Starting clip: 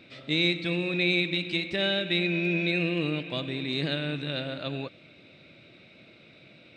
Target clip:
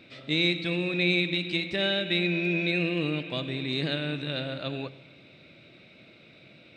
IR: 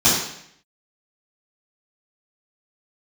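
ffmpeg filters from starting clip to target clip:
-filter_complex "[0:a]asplit=2[a][b];[1:a]atrim=start_sample=2205,asetrate=24696,aresample=44100,adelay=31[c];[b][c]afir=irnorm=-1:irlink=0,volume=-43.5dB[d];[a][d]amix=inputs=2:normalize=0"

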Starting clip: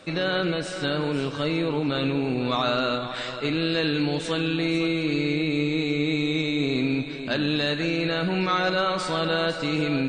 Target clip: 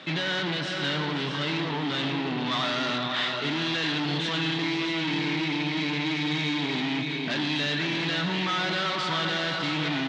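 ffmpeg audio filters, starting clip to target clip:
-af "volume=30dB,asoftclip=hard,volume=-30dB,highpass=f=130:w=0.5412,highpass=f=130:w=1.3066,equalizer=f=150:t=q:w=4:g=4,equalizer=f=500:t=q:w=4:g=-8,equalizer=f=930:t=q:w=4:g=4,equalizer=f=1.9k:t=q:w=4:g=7,equalizer=f=3.3k:t=q:w=4:g=9,lowpass=f=5.6k:w=0.5412,lowpass=f=5.6k:w=1.3066,aecho=1:1:637:0.335,volume=2.5dB"

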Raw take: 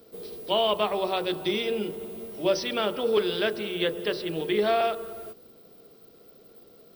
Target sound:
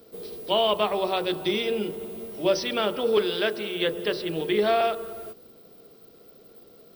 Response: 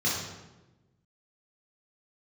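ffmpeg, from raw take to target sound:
-filter_complex "[0:a]asettb=1/sr,asplit=3[a][b][c];[a]atrim=end=3.254[d];[b]atrim=start=3.25:end=3.87,asetpts=PTS-STARTPTS,afade=t=in:d=0.004:c=qsin,afade=t=out:st=0.616:d=0.004:c=qsin,highpass=f=210:p=1[e];[c]atrim=start=3.866[f];[d][e]acrossfade=d=0.004:c1=hsin:c2=qsin[g];[g][f]acrossfade=d=0.004:c1=qsin:c2=hsin,volume=1.5dB"

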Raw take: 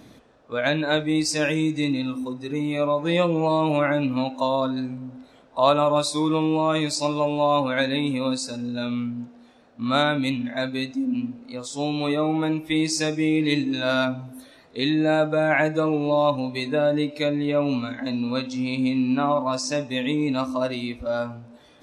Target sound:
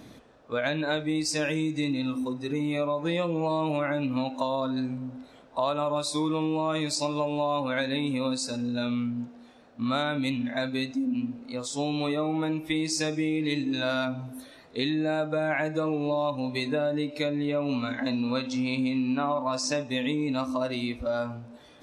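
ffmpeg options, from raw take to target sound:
-filter_complex "[0:a]asettb=1/sr,asplit=3[a][b][c];[a]atrim=end=17.694[d];[b]atrim=start=17.69:end=19.83,asetpts=PTS-STARTPTS,afade=t=in:d=0.004:c=qsin,afade=t=out:st=2.136:d=0.004:c=qsin,equalizer=f=1.4k:w=0.31:g=3[e];[c]atrim=start=19.826[f];[d][e]acrossfade=d=0.004:c1=hsin:c2=qsin[g];[g][f]acrossfade=d=0.004:c1=qsin:c2=hsin,acompressor=threshold=-25dB:ratio=4"

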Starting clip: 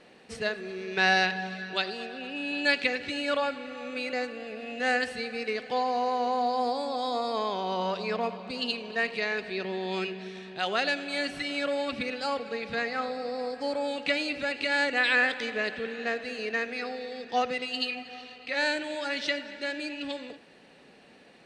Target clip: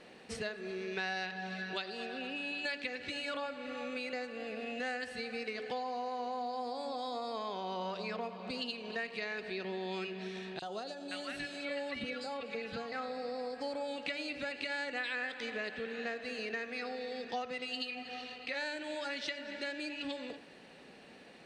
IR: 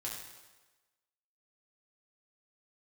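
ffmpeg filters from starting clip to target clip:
-filter_complex "[0:a]bandreject=f=143.9:t=h:w=4,bandreject=f=287.8:t=h:w=4,bandreject=f=431.7:t=h:w=4,bandreject=f=575.6:t=h:w=4,bandreject=f=719.5:t=h:w=4,bandreject=f=863.4:t=h:w=4,bandreject=f=1.0073k:t=h:w=4,bandreject=f=1.1512k:t=h:w=4,bandreject=f=1.2951k:t=h:w=4,bandreject=f=1.439k:t=h:w=4,bandreject=f=1.5829k:t=h:w=4,bandreject=f=1.7268k:t=h:w=4,acompressor=threshold=-37dB:ratio=4,asettb=1/sr,asplit=3[a][b][c];[a]atrim=end=10.594[d];[b]atrim=start=10.59:end=12.92,asetpts=PTS-STARTPTS,afade=t=in:d=0.004:c=qsin,afade=t=out:st=2.326:d=0.004:c=qsin,acrossover=split=1200|3700[e][f][g];[e]adelay=30[h];[f]adelay=520[i];[h][i][g]amix=inputs=3:normalize=0,atrim=end_sample=102753[j];[c]atrim=start=12.916[k];[d][j]acrossfade=d=0.004:c1=hsin:c2=qsin[l];[l][k]acrossfade=d=0.004:c1=qsin:c2=hsin"

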